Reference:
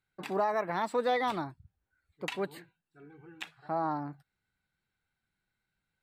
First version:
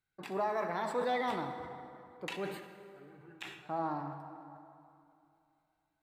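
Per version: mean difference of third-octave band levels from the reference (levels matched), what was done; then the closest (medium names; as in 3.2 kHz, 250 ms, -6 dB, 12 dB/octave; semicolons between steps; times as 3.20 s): 5.5 dB: plate-style reverb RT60 2.7 s, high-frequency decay 0.6×, DRR 5 dB; decay stretcher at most 72 dB/s; trim -5 dB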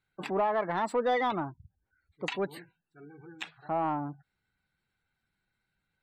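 3.0 dB: spectral gate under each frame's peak -25 dB strong; saturation -22.5 dBFS, distortion -20 dB; trim +3 dB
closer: second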